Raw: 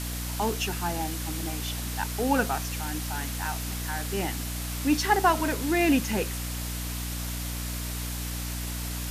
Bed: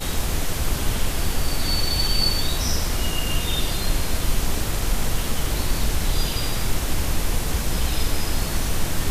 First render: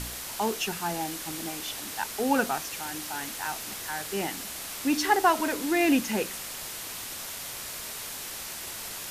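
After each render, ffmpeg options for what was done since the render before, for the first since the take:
-af "bandreject=f=60:t=h:w=4,bandreject=f=120:t=h:w=4,bandreject=f=180:t=h:w=4,bandreject=f=240:t=h:w=4,bandreject=f=300:t=h:w=4"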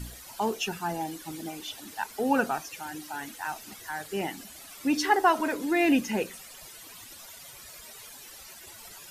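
-af "afftdn=nr=14:nf=-38"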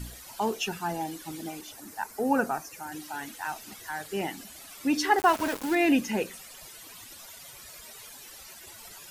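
-filter_complex "[0:a]asettb=1/sr,asplit=3[a][b][c];[a]atrim=end=1.614[d];[b]atrim=start=1.61:end=2.92,asetpts=PTS-STARTPTS,afade=t=in:d=0.004:c=qsin,afade=t=out:st=1.306:d=0.004:c=qsin,equalizer=f=3.3k:w=1.6:g=-11.5[e];[c]atrim=start=2.916[f];[d][e]acrossfade=d=0.004:c1=hsin:c2=qsin[g];[g][f]acrossfade=d=0.004:c1=qsin:c2=hsin,asettb=1/sr,asplit=3[h][i][j];[h]atrim=end=5.184[k];[i]atrim=start=5.18:end=5.75,asetpts=PTS-STARTPTS,afade=t=in:d=0.004:c=qsin,afade=t=out:st=0.566:d=0.004:c=qsin,aeval=exprs='val(0)*gte(abs(val(0)),0.0282)':c=same[l];[j]atrim=start=5.746[m];[k][l]acrossfade=d=0.004:c1=hsin:c2=qsin[n];[n][m]acrossfade=d=0.004:c1=qsin:c2=hsin"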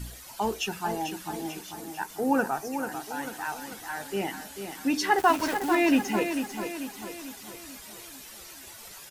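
-filter_complex "[0:a]asplit=2[a][b];[b]adelay=15,volume=-12.5dB[c];[a][c]amix=inputs=2:normalize=0,aecho=1:1:443|886|1329|1772|2215|2658:0.398|0.199|0.0995|0.0498|0.0249|0.0124"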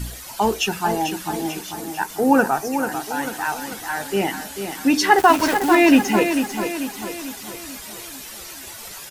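-af "volume=9dB,alimiter=limit=-2dB:level=0:latency=1"

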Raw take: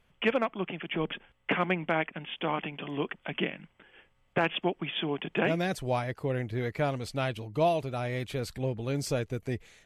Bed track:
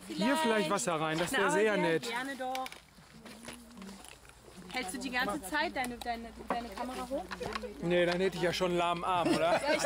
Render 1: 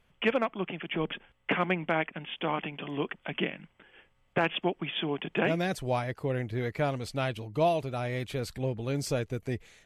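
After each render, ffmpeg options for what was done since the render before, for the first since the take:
-af anull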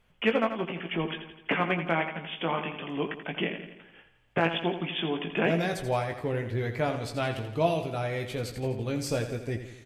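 -filter_complex "[0:a]asplit=2[a][b];[b]adelay=18,volume=-6.5dB[c];[a][c]amix=inputs=2:normalize=0,asplit=2[d][e];[e]aecho=0:1:84|168|252|336|420|504:0.316|0.177|0.0992|0.0555|0.0311|0.0174[f];[d][f]amix=inputs=2:normalize=0"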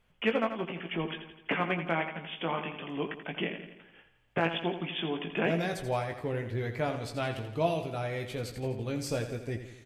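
-af "volume=-3dB"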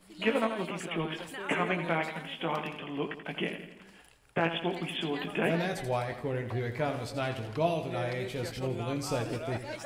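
-filter_complex "[1:a]volume=-10.5dB[a];[0:a][a]amix=inputs=2:normalize=0"

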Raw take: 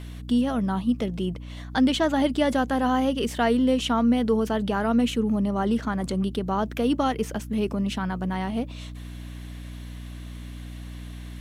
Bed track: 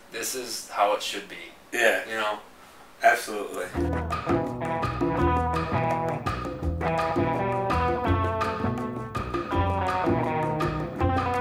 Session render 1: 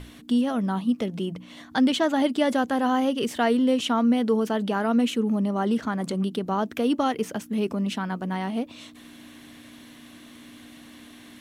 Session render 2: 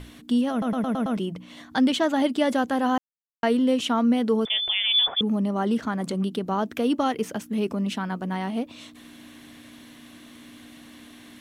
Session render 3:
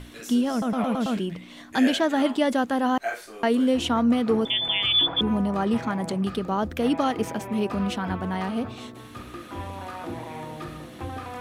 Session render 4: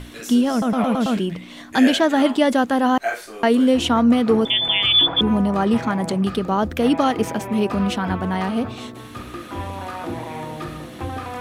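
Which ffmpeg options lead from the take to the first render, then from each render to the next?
-af "bandreject=f=60:t=h:w=6,bandreject=f=120:t=h:w=6,bandreject=f=180:t=h:w=6"
-filter_complex "[0:a]asettb=1/sr,asplit=3[a][b][c];[a]atrim=end=4.454[d];[b]atrim=start=4.45:end=5.21,asetpts=PTS-STARTPTS,afade=t=in:d=0.004:c=qsin,afade=t=out:st=0.756:d=0.004:c=qsin,lowpass=f=3.1k:t=q:w=0.5098,lowpass=f=3.1k:t=q:w=0.6013,lowpass=f=3.1k:t=q:w=0.9,lowpass=f=3.1k:t=q:w=2.563,afreqshift=-3700[e];[c]atrim=start=5.206[f];[d][e]acrossfade=d=0.004:c1=hsin:c2=qsin[g];[g][f]acrossfade=d=0.004:c1=qsin:c2=hsin,asplit=9[h][i][j][k][l][m][n][o][p];[h]atrim=end=0.622[q];[i]atrim=start=0.508:end=0.622[r];[j]atrim=start=0.508:end=0.622[s];[k]atrim=start=0.508:end=0.622[t];[l]atrim=start=0.508:end=0.622[u];[m]atrim=start=0.508:end=0.622[v];[n]atrim=start=1.168:end=2.98,asetpts=PTS-STARTPTS,afade=t=out:st=1.808:d=0.004:c=hsin[w];[o]atrim=start=2.98:end=3.43,asetpts=PTS-STARTPTS,volume=0[x];[p]atrim=start=3.43,asetpts=PTS-STARTPTS,afade=t=in:d=0.004:c=hsin[y];[q][r]acrossfade=d=0.004:c1=hsin:c2=hsin[z];[z][s]acrossfade=d=0.004:c1=hsin:c2=hsin[aa];[aa][t]acrossfade=d=0.004:c1=hsin:c2=hsin[ab];[ab][u]acrossfade=d=0.004:c1=hsin:c2=hsin[ac];[ac][v]acrossfade=d=0.004:c1=hsin:c2=hsin[ad];[w][x][y]concat=n=3:v=0:a=1[ae];[ad][ae]acrossfade=d=0.004:c1=hsin:c2=hsin"
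-filter_complex "[1:a]volume=-10.5dB[a];[0:a][a]amix=inputs=2:normalize=0"
-af "volume=5.5dB"

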